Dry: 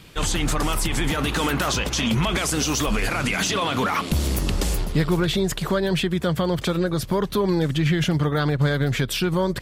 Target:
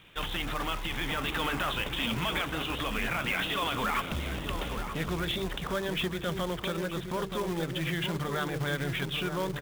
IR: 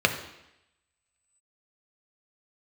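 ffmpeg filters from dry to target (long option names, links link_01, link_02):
-filter_complex "[0:a]aresample=8000,volume=15.5dB,asoftclip=hard,volume=-15.5dB,aresample=44100,tiltshelf=frequency=650:gain=-4,bandreject=frequency=50:width_type=h:width=6,bandreject=frequency=100:width_type=h:width=6,bandreject=frequency=150:width_type=h:width=6,bandreject=frequency=200:width_type=h:width=6,bandreject=frequency=250:width_type=h:width=6,bandreject=frequency=300:width_type=h:width=6,bandreject=frequency=350:width_type=h:width=6,bandreject=frequency=400:width_type=h:width=6,bandreject=frequency=450:width_type=h:width=6,asplit=2[link_01][link_02];[link_02]adelay=926,lowpass=frequency=980:poles=1,volume=-5.5dB,asplit=2[link_03][link_04];[link_04]adelay=926,lowpass=frequency=980:poles=1,volume=0.44,asplit=2[link_05][link_06];[link_06]adelay=926,lowpass=frequency=980:poles=1,volume=0.44,asplit=2[link_07][link_08];[link_08]adelay=926,lowpass=frequency=980:poles=1,volume=0.44,asplit=2[link_09][link_10];[link_10]adelay=926,lowpass=frequency=980:poles=1,volume=0.44[link_11];[link_01][link_03][link_05][link_07][link_09][link_11]amix=inputs=6:normalize=0,acrusher=bits=3:mode=log:mix=0:aa=0.000001,volume=-8.5dB"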